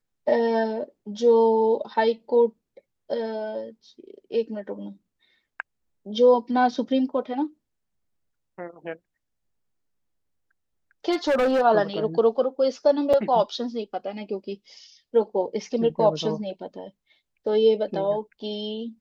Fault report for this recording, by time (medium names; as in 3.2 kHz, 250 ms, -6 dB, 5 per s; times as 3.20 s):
11.11–11.62 s: clipped -18 dBFS
13.13–13.14 s: dropout 5.3 ms